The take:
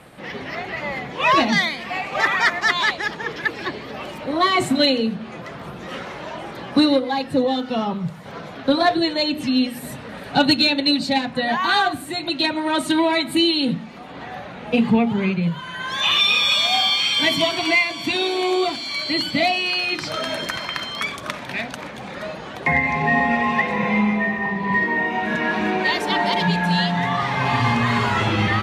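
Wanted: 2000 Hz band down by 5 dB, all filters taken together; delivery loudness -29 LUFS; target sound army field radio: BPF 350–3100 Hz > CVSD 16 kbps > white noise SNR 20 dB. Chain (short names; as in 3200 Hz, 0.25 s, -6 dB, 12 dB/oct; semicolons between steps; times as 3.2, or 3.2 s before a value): BPF 350–3100 Hz; bell 2000 Hz -5 dB; CVSD 16 kbps; white noise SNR 20 dB; gain -2.5 dB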